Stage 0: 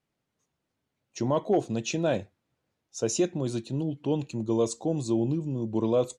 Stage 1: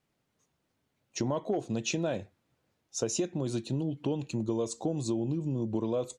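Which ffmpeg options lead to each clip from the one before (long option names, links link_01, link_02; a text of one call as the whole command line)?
ffmpeg -i in.wav -af "acompressor=threshold=-31dB:ratio=6,volume=3.5dB" out.wav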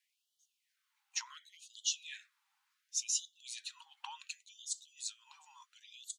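ffmpeg -i in.wav -af "afftfilt=real='re*gte(b*sr/1024,750*pow(2900/750,0.5+0.5*sin(2*PI*0.69*pts/sr)))':imag='im*gte(b*sr/1024,750*pow(2900/750,0.5+0.5*sin(2*PI*0.69*pts/sr)))':win_size=1024:overlap=0.75,volume=1.5dB" out.wav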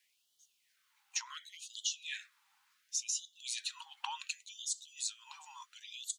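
ffmpeg -i in.wav -af "acompressor=threshold=-41dB:ratio=6,volume=7.5dB" out.wav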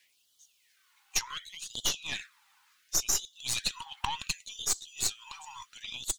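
ffmpeg -i in.wav -af "aeval=exprs='0.112*(cos(1*acos(clip(val(0)/0.112,-1,1)))-cos(1*PI/2))+0.00891*(cos(4*acos(clip(val(0)/0.112,-1,1)))-cos(4*PI/2))+0.00631*(cos(8*acos(clip(val(0)/0.112,-1,1)))-cos(8*PI/2))':channel_layout=same,aphaser=in_gain=1:out_gain=1:delay=2.8:decay=0.36:speed=0.51:type=sinusoidal,volume=6.5dB" out.wav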